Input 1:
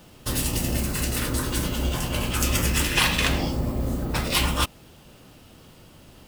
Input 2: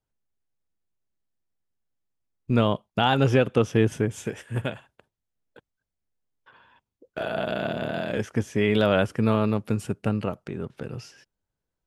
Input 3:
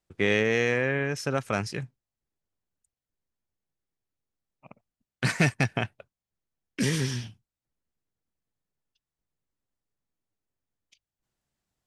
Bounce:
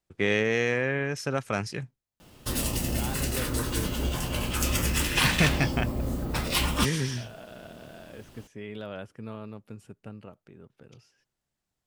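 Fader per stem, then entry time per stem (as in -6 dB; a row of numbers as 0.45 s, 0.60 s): -3.5 dB, -17.5 dB, -1.0 dB; 2.20 s, 0.00 s, 0.00 s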